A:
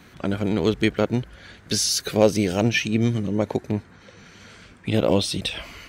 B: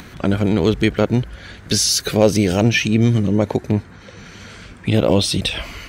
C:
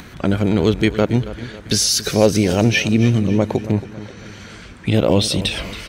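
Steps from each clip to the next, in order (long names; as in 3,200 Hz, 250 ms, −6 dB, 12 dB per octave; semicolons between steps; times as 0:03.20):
low-shelf EQ 98 Hz +6.5 dB; in parallel at +1 dB: brickwall limiter −15.5 dBFS, peak gain reduction 11.5 dB; on the sum: upward compression, threshold −34 dBFS
repeating echo 276 ms, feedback 47%, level −15 dB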